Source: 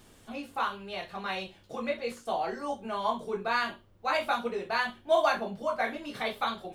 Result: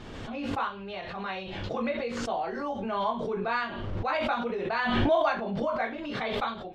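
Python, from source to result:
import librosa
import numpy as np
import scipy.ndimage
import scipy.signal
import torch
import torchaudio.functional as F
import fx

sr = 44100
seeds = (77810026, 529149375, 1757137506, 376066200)

y = fx.air_absorb(x, sr, metres=180.0)
y = fx.pre_swell(y, sr, db_per_s=27.0)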